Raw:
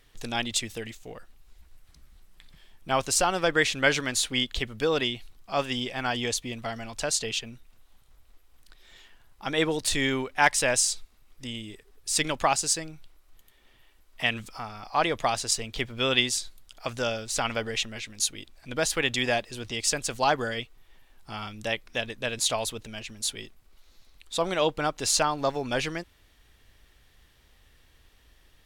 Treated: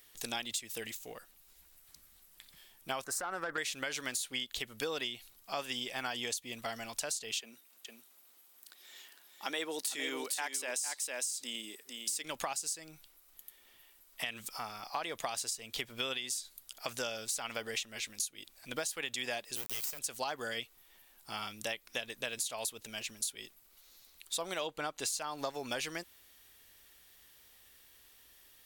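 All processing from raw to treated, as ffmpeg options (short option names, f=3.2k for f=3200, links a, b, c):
-filter_complex "[0:a]asettb=1/sr,asplit=3[a][b][c];[a]atrim=end=3.044[d];[b]atrim=start=3.04:end=3.58,asetpts=PTS-STARTPTS,afade=t=in:d=0.004:c=qsin,afade=t=out:st=0.536:d=0.004:c=qsin,highshelf=f=2.1k:t=q:w=3:g=-10,acompressor=threshold=-22dB:ratio=6:attack=3.2:release=140:knee=1:detection=peak,aeval=exprs='(tanh(8.91*val(0)+0.25)-tanh(0.25))/8.91':c=same[e];[c]atrim=start=3.576[f];[d][e]acrossfade=d=0.004:c1=hsin:c2=qsin[g];[g][f]acrossfade=d=0.004:c1=qsin:c2=hsin,asettb=1/sr,asplit=3[h][i][j];[h]atrim=end=7.394[k];[i]atrim=start=7.39:end=12.24,asetpts=PTS-STARTPTS,afade=t=in:d=0.004:c=qsin,afade=t=out:st=4.846:d=0.004:c=qsin,highpass=f=210:w=0.5412,highpass=f=210:w=1.3066,aecho=1:1:456:0.473,atrim=end_sample=213885[l];[j]atrim=start=12.236[m];[k][l]acrossfade=d=0.004:c1=hsin:c2=qsin[n];[n][m]acrossfade=d=0.004:c1=qsin:c2=hsin,asettb=1/sr,asplit=3[o][p][q];[o]atrim=end=19.564[r];[p]atrim=start=19.56:end=19.99,asetpts=PTS-STARTPTS,afade=t=in:d=0.004:c=qsin,afade=t=out:st=0.426:d=0.004:c=qsin,aecho=1:1:1.6:0.3,atrim=end_sample=18963,acrusher=bits=4:dc=4:mix=0:aa=0.000001,aeval=exprs='max(val(0),0)':c=same[s];[q]atrim=start=19.986[t];[r][s]acrossfade=d=0.004:c1=hsin:c2=qsin[u];[u][t]acrossfade=d=0.004:c1=qsin:c2=hsin,asettb=1/sr,asplit=3[v][w][x];[v]atrim=end=24.674[y];[w]atrim=start=24.67:end=25.07,asetpts=PTS-STARTPTS,afade=t=in:d=0.004:c=qsin,afade=t=out:st=0.396:d=0.004:c=qsin,highshelf=f=11k:g=-10.5,bandreject=f=5.3k:w=9.8[z];[x]atrim=start=25.066[aa];[y][z]acrossfade=d=0.004:c1=hsin:c2=qsin[ab];[ab][aa]acrossfade=d=0.004:c1=qsin:c2=hsin,aemphasis=mode=production:type=bsi,alimiter=limit=-12.5dB:level=0:latency=1:release=245,acompressor=threshold=-30dB:ratio=6,volume=-3.5dB"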